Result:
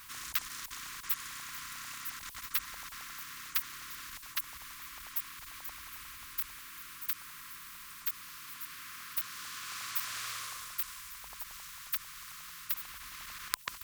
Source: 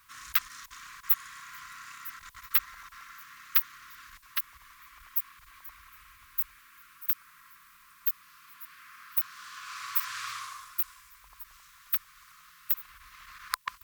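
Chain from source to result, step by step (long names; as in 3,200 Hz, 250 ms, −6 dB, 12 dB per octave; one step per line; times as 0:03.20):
every bin compressed towards the loudest bin 2 to 1
level +1 dB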